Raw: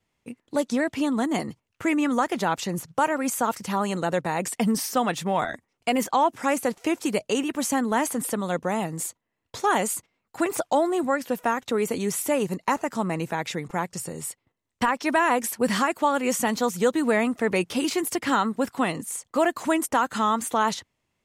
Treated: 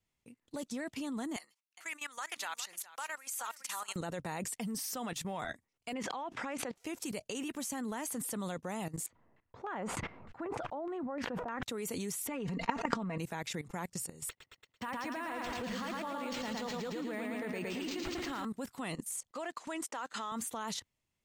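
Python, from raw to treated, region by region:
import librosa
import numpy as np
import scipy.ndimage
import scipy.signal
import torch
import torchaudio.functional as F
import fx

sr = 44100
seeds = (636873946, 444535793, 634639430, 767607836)

y = fx.chain(x, sr, fx.highpass(hz=1300.0, slope=12),
    fx.echo_single(ms=411, db=-12.0), at=(1.36, 3.96))
y = fx.chain(y, sr, fx.lowpass(hz=3100.0, slope=12),
    fx.low_shelf(hz=120.0, db=-11.5),
    fx.pre_swell(db_per_s=120.0), at=(5.93, 6.76))
y = fx.chain(y, sr, fx.filter_lfo_lowpass(shape='saw_down', hz=3.3, low_hz=710.0, high_hz=2300.0, q=1.2),
    fx.sustainer(db_per_s=36.0), at=(9.06, 11.63))
y = fx.chain(y, sr, fx.lowpass(hz=2800.0, slope=12),
    fx.comb(ms=4.3, depth=0.65),
    fx.env_flatten(amount_pct=100), at=(12.27, 13.18))
y = fx.chain(y, sr, fx.highpass(hz=100.0, slope=12),
    fx.echo_feedback(ms=112, feedback_pct=57, wet_db=-3.5),
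    fx.resample_linear(factor=4), at=(14.29, 18.45))
y = fx.chain(y, sr, fx.block_float(bits=7),
    fx.bandpass_edges(low_hz=370.0, high_hz=6500.0), at=(19.31, 20.32))
y = fx.high_shelf(y, sr, hz=2700.0, db=8.0)
y = fx.level_steps(y, sr, step_db=16)
y = fx.low_shelf(y, sr, hz=150.0, db=8.5)
y = F.gain(torch.from_numpy(y), -7.5).numpy()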